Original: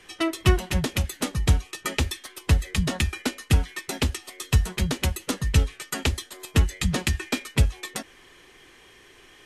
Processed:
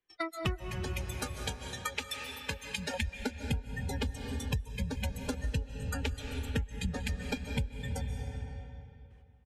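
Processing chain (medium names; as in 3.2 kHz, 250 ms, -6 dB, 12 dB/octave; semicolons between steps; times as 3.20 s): echo from a far wall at 260 m, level -22 dB; gate -43 dBFS, range -18 dB; reverb removal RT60 0.83 s; treble shelf 3.5 kHz -10 dB; spectral noise reduction 24 dB; 0.72–2.94 s: high-pass 1.2 kHz 6 dB/octave; reverberation RT60 2.4 s, pre-delay 105 ms, DRR 7.5 dB; compression 5:1, threshold -38 dBFS, peak gain reduction 22 dB; trim +5.5 dB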